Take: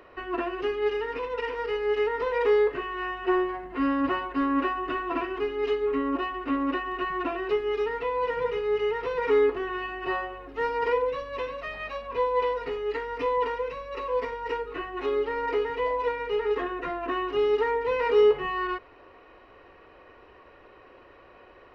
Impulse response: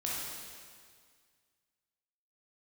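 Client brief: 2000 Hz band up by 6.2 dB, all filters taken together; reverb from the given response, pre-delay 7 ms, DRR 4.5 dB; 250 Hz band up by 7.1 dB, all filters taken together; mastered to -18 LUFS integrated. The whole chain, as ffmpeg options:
-filter_complex "[0:a]equalizer=f=250:t=o:g=8.5,equalizer=f=2k:t=o:g=7,asplit=2[a][b];[1:a]atrim=start_sample=2205,adelay=7[c];[b][c]afir=irnorm=-1:irlink=0,volume=-9dB[d];[a][d]amix=inputs=2:normalize=0,volume=4dB"

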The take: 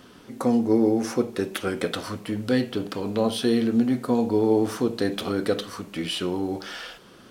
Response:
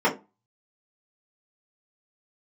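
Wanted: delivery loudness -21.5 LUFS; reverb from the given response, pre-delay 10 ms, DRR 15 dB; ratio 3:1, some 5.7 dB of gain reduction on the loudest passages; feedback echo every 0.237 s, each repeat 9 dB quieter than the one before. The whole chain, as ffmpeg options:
-filter_complex "[0:a]acompressor=threshold=-23dB:ratio=3,aecho=1:1:237|474|711|948:0.355|0.124|0.0435|0.0152,asplit=2[a][b];[1:a]atrim=start_sample=2205,adelay=10[c];[b][c]afir=irnorm=-1:irlink=0,volume=-32.5dB[d];[a][d]amix=inputs=2:normalize=0,volume=6.5dB"

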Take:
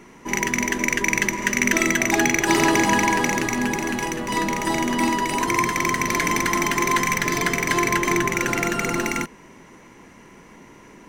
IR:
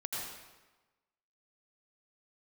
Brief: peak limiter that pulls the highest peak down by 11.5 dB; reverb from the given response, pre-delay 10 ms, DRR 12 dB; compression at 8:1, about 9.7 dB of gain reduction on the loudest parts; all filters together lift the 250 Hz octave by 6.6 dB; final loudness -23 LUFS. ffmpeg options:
-filter_complex "[0:a]equalizer=f=250:t=o:g=8.5,acompressor=threshold=-21dB:ratio=8,alimiter=limit=-21dB:level=0:latency=1,asplit=2[a][b];[1:a]atrim=start_sample=2205,adelay=10[c];[b][c]afir=irnorm=-1:irlink=0,volume=-14.5dB[d];[a][d]amix=inputs=2:normalize=0,volume=6.5dB"

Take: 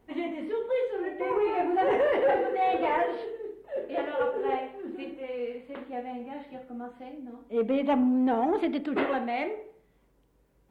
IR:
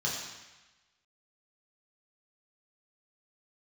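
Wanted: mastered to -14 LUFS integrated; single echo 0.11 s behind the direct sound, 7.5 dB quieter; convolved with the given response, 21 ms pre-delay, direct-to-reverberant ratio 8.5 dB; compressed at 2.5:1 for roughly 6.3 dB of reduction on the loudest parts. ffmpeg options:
-filter_complex "[0:a]acompressor=threshold=-31dB:ratio=2.5,aecho=1:1:110:0.422,asplit=2[a][b];[1:a]atrim=start_sample=2205,adelay=21[c];[b][c]afir=irnorm=-1:irlink=0,volume=-15dB[d];[a][d]amix=inputs=2:normalize=0,volume=18.5dB"

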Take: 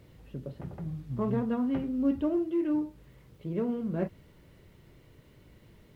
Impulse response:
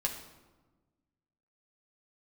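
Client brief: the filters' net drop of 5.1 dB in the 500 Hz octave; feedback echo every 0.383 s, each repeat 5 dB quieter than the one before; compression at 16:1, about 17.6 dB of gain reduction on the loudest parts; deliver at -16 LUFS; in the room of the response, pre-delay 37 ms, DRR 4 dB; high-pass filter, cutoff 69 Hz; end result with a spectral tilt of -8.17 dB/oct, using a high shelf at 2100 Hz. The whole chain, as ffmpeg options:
-filter_complex "[0:a]highpass=69,equalizer=f=500:t=o:g=-7.5,highshelf=f=2.1k:g=3.5,acompressor=threshold=-42dB:ratio=16,aecho=1:1:383|766|1149|1532|1915|2298|2681:0.562|0.315|0.176|0.0988|0.0553|0.031|0.0173,asplit=2[a][b];[1:a]atrim=start_sample=2205,adelay=37[c];[b][c]afir=irnorm=-1:irlink=0,volume=-8dB[d];[a][d]amix=inputs=2:normalize=0,volume=29dB"

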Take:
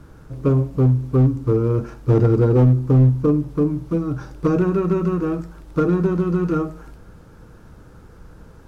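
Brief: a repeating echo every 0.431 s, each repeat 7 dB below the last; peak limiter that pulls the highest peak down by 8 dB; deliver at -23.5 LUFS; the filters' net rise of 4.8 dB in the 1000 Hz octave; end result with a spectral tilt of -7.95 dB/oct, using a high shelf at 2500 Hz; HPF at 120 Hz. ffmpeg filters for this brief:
-af "highpass=120,equalizer=f=1k:t=o:g=5.5,highshelf=f=2.5k:g=3.5,alimiter=limit=-12.5dB:level=0:latency=1,aecho=1:1:431|862|1293|1724|2155:0.447|0.201|0.0905|0.0407|0.0183,volume=-1.5dB"

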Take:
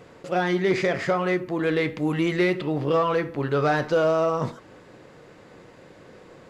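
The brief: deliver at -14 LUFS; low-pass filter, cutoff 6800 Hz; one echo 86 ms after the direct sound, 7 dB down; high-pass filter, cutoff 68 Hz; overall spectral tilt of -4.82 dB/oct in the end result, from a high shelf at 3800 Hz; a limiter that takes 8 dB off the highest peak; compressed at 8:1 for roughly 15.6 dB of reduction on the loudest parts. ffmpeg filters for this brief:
-af "highpass=68,lowpass=6.8k,highshelf=f=3.8k:g=3,acompressor=threshold=-34dB:ratio=8,alimiter=level_in=8dB:limit=-24dB:level=0:latency=1,volume=-8dB,aecho=1:1:86:0.447,volume=27dB"

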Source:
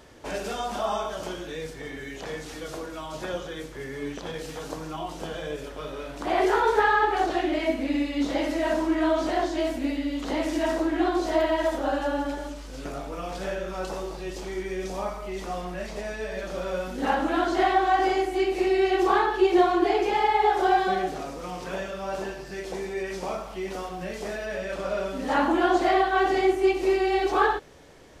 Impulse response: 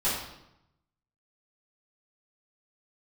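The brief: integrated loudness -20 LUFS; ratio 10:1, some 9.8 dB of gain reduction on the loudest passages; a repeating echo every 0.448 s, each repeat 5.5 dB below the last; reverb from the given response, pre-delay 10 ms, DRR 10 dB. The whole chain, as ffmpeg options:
-filter_complex "[0:a]acompressor=threshold=-26dB:ratio=10,aecho=1:1:448|896|1344|1792|2240|2688|3136:0.531|0.281|0.149|0.079|0.0419|0.0222|0.0118,asplit=2[a][b];[1:a]atrim=start_sample=2205,adelay=10[c];[b][c]afir=irnorm=-1:irlink=0,volume=-20.5dB[d];[a][d]amix=inputs=2:normalize=0,volume=10dB"

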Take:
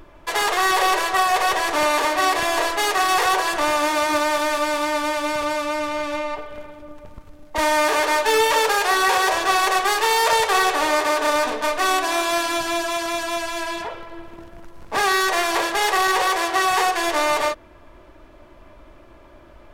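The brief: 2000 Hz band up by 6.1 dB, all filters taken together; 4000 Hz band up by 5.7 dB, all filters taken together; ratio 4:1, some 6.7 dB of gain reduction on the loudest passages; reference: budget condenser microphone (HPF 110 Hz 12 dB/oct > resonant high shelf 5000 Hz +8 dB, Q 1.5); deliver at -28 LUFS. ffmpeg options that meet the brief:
-af "equalizer=f=2k:t=o:g=7.5,equalizer=f=4k:t=o:g=5,acompressor=threshold=-18dB:ratio=4,highpass=110,highshelf=f=5k:t=q:w=1.5:g=8,volume=-8dB"

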